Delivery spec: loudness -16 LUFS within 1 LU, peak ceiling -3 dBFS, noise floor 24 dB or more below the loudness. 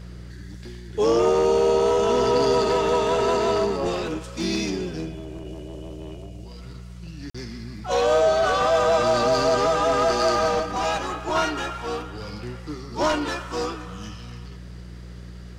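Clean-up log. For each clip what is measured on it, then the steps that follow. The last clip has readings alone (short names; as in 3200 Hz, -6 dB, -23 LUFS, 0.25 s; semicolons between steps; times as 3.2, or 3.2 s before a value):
dropouts 1; longest dropout 45 ms; hum 60 Hz; harmonics up to 180 Hz; hum level -37 dBFS; loudness -22.0 LUFS; peak -11.0 dBFS; loudness target -16.0 LUFS
-> interpolate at 7.3, 45 ms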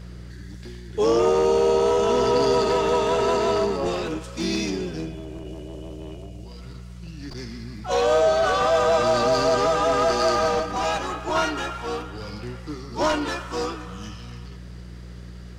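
dropouts 0; hum 60 Hz; harmonics up to 180 Hz; hum level -37 dBFS
-> de-hum 60 Hz, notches 3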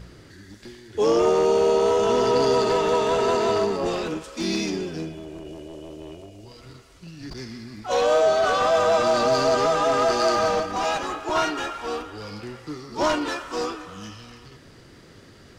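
hum none; loudness -22.0 LUFS; peak -11.0 dBFS; loudness target -16.0 LUFS
-> gain +6 dB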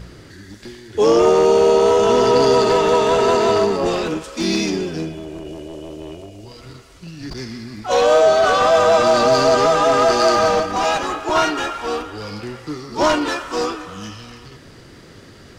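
loudness -16.0 LUFS; peak -5.0 dBFS; noise floor -43 dBFS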